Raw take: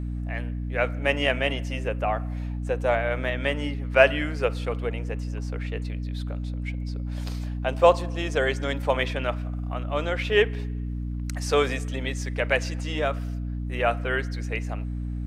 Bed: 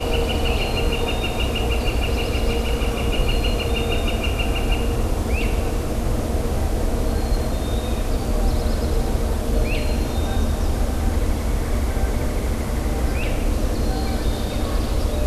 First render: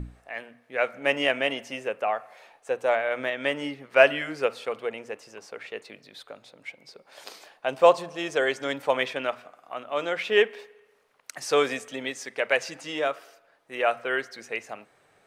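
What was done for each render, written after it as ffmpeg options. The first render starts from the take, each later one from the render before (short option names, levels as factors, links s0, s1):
-af "bandreject=f=60:t=h:w=6,bandreject=f=120:t=h:w=6,bandreject=f=180:t=h:w=6,bandreject=f=240:t=h:w=6,bandreject=f=300:t=h:w=6"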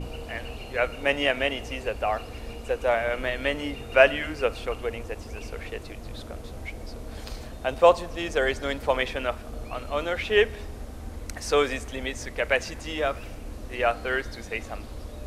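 -filter_complex "[1:a]volume=0.141[s0];[0:a][s0]amix=inputs=2:normalize=0"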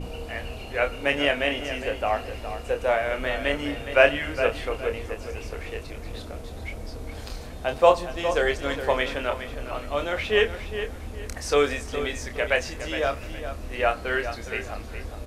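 -filter_complex "[0:a]asplit=2[s0][s1];[s1]adelay=28,volume=0.447[s2];[s0][s2]amix=inputs=2:normalize=0,asplit=2[s3][s4];[s4]adelay=413,lowpass=f=4800:p=1,volume=0.316,asplit=2[s5][s6];[s6]adelay=413,lowpass=f=4800:p=1,volume=0.3,asplit=2[s7][s8];[s8]adelay=413,lowpass=f=4800:p=1,volume=0.3[s9];[s3][s5][s7][s9]amix=inputs=4:normalize=0"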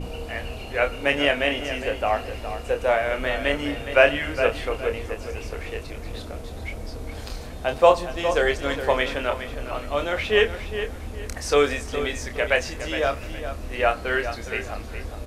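-af "volume=1.26,alimiter=limit=0.708:level=0:latency=1"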